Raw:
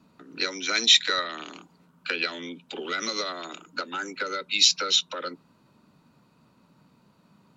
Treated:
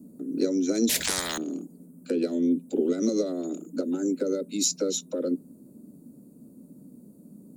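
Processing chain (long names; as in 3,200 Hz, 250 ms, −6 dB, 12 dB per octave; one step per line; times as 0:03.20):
drawn EQ curve 130 Hz 0 dB, 260 Hz +15 dB, 380 Hz +8 dB, 580 Hz +3 dB, 970 Hz −19 dB, 3,000 Hz −25 dB, 5,600 Hz −10 dB, 8,800 Hz +13 dB
0:00.89–0:01.38: every bin compressed towards the loudest bin 10 to 1
level +2.5 dB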